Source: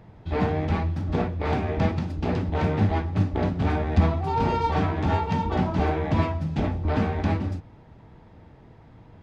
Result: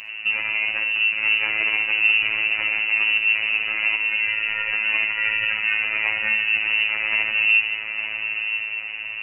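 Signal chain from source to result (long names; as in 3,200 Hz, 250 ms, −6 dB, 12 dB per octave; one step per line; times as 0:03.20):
compressor whose output falls as the input rises −31 dBFS, ratio −1
voice inversion scrambler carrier 2,800 Hz
feedback delay with all-pass diffusion 912 ms, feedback 42%, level −6.5 dB
on a send at −4.5 dB: convolution reverb RT60 0.45 s, pre-delay 49 ms
on the sum: phases set to zero 108 Hz
level +8 dB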